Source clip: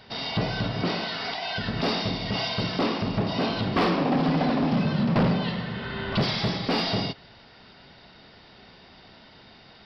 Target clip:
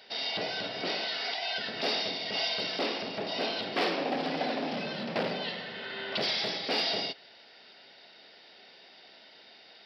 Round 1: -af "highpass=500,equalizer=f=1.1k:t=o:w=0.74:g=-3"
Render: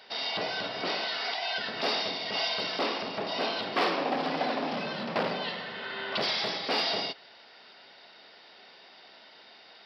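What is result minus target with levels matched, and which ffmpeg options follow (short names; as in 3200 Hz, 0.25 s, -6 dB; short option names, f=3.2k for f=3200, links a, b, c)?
1000 Hz band +3.0 dB
-af "highpass=500,equalizer=f=1.1k:t=o:w=0.74:g=-11"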